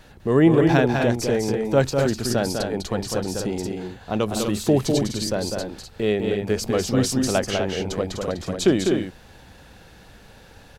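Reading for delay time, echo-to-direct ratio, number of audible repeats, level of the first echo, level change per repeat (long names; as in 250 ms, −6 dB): 200 ms, −2.5 dB, 2, −5.0 dB, repeats not evenly spaced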